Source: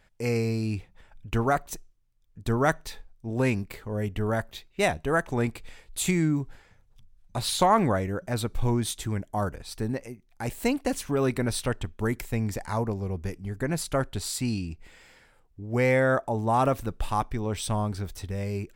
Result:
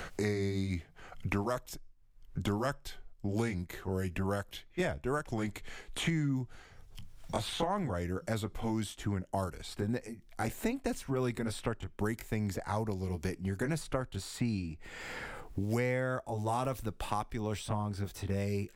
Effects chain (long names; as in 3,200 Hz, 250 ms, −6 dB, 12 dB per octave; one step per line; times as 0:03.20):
pitch glide at a constant tempo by −2.5 semitones ending unshifted
multiband upward and downward compressor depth 100%
level −6.5 dB